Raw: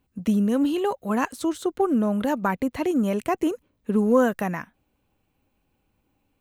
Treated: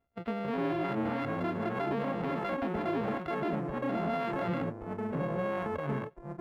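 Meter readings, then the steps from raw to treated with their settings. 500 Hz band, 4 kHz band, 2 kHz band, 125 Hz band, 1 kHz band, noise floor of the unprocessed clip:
-7.5 dB, -7.0 dB, -5.0 dB, -3.0 dB, -5.5 dB, -73 dBFS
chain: sample sorter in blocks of 64 samples; low shelf 230 Hz -7.5 dB; in parallel at -1.5 dB: negative-ratio compressor -31 dBFS, ratio -1; on the sum: air absorption 470 m; spectral noise reduction 9 dB; echoes that change speed 0.225 s, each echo -4 st, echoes 3; limiter -20 dBFS, peak gain reduction 10 dB; gain -4 dB

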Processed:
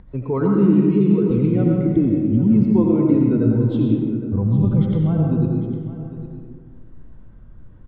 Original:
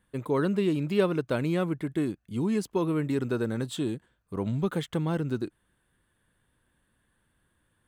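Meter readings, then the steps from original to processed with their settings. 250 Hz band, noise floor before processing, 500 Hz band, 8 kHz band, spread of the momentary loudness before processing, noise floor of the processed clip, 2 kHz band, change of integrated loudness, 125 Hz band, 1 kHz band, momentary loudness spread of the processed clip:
+13.0 dB, -73 dBFS, +6.5 dB, under -30 dB, 7 LU, -43 dBFS, n/a, +11.5 dB, +14.0 dB, +2.5 dB, 11 LU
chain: spectral noise reduction 10 dB; spectral repair 0.66–1.46, 510–2000 Hz; tilt -4 dB/oct; notch 1700 Hz, Q 7.7; in parallel at -0.5 dB: compressor, threshold -29 dBFS, peak gain reduction 15.5 dB; on the sum: limiter -15.5 dBFS, peak gain reduction 10.5 dB; upward compressor, threshold -37 dBFS; air absorption 360 m; on a send: echo 0.805 s -14.5 dB; on the sum: digital reverb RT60 1.8 s, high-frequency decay 0.45×, pre-delay 50 ms, DRR -1 dB; gain +3 dB

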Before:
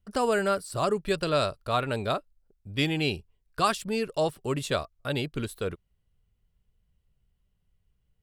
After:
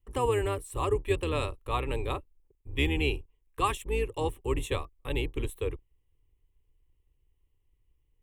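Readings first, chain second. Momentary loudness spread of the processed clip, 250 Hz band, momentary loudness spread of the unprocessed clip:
8 LU, -4.5 dB, 8 LU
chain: octaver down 2 oct, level +2 dB; fixed phaser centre 970 Hz, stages 8

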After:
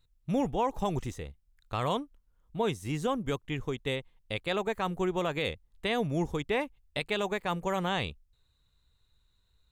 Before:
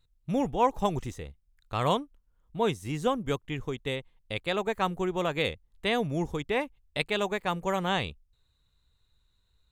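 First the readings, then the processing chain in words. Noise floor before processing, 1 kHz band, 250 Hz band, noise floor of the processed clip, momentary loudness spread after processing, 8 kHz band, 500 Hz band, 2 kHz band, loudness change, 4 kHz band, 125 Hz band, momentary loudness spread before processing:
-71 dBFS, -3.5 dB, -1.0 dB, -71 dBFS, 7 LU, -1.5 dB, -2.0 dB, -2.0 dB, -2.0 dB, -2.5 dB, -1.0 dB, 9 LU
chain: limiter -19 dBFS, peak gain reduction 6.5 dB

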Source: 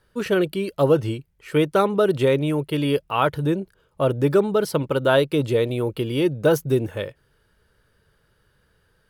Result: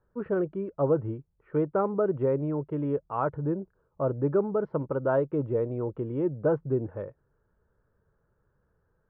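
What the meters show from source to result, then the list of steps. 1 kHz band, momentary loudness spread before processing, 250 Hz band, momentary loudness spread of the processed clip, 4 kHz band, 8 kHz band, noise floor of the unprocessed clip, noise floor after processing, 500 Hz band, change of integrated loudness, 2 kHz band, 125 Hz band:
-8.0 dB, 6 LU, -7.0 dB, 6 LU, under -35 dB, under -40 dB, -65 dBFS, -73 dBFS, -7.0 dB, -7.5 dB, -15.0 dB, -7.0 dB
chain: LPF 1300 Hz 24 dB/oct; gain -7 dB

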